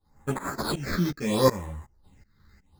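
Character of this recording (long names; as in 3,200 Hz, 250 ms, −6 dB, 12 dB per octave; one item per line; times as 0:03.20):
aliases and images of a low sample rate 2,900 Hz, jitter 0%
phaser sweep stages 6, 0.73 Hz, lowest notch 710–4,800 Hz
tremolo saw up 2.7 Hz, depth 95%
a shimmering, thickened sound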